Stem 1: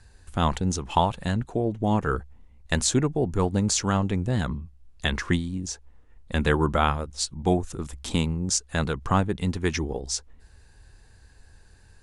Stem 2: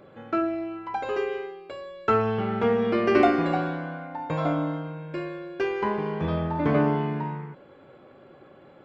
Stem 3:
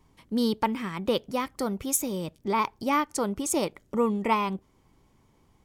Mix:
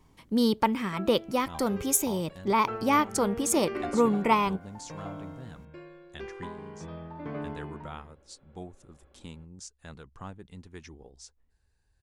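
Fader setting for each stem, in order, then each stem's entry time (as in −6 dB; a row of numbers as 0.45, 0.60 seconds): −20.0, −14.5, +1.5 decibels; 1.10, 0.60, 0.00 seconds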